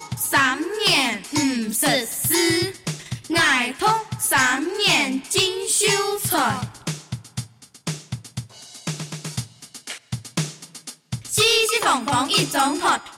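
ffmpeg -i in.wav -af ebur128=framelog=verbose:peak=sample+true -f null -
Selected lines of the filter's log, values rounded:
Integrated loudness:
  I:         -19.9 LUFS
  Threshold: -31.0 LUFS
Loudness range:
  LRA:        12.5 LU
  Threshold: -41.6 LUFS
  LRA low:   -31.6 LUFS
  LRA high:  -19.1 LUFS
Sample peak:
  Peak:       -9.4 dBFS
True peak:
  Peak:       -8.5 dBFS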